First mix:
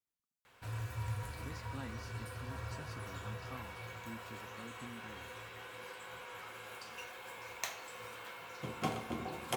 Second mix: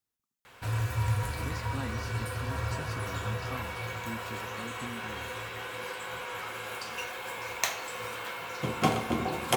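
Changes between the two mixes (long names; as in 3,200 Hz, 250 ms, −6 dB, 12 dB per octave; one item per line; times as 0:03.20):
speech +8.0 dB
background +10.5 dB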